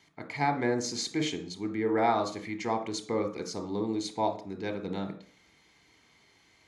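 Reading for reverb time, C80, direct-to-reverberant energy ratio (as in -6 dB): 0.45 s, 17.5 dB, 9.0 dB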